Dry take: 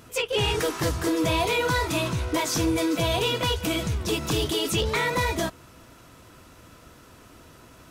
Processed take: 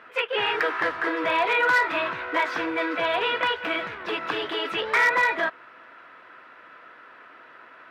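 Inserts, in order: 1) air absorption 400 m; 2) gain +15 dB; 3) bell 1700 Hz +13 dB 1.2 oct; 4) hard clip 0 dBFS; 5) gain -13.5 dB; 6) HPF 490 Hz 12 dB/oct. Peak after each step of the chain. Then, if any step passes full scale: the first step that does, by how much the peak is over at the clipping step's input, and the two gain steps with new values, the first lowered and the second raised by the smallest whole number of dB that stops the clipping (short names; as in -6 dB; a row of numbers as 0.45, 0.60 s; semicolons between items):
-16.5, -1.5, +5.0, 0.0, -13.5, -10.0 dBFS; step 3, 5.0 dB; step 2 +10 dB, step 5 -8.5 dB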